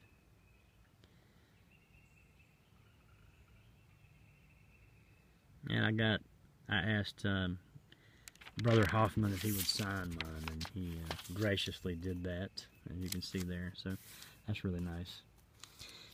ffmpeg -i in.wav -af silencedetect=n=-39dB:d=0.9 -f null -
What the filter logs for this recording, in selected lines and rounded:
silence_start: 0.00
silence_end: 5.66 | silence_duration: 5.66